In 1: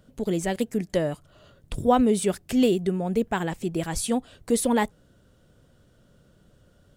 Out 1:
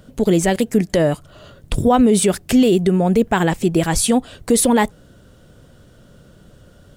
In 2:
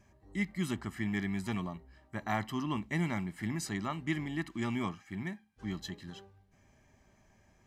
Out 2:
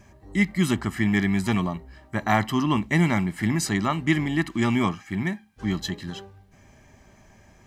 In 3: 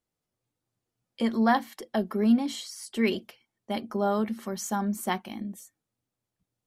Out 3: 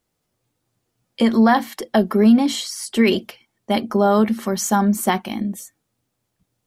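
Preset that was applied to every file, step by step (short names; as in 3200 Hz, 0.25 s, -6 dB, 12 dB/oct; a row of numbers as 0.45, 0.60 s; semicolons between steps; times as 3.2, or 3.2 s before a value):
limiter -17.5 dBFS; normalise peaks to -6 dBFS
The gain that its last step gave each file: +11.5, +12.0, +11.5 dB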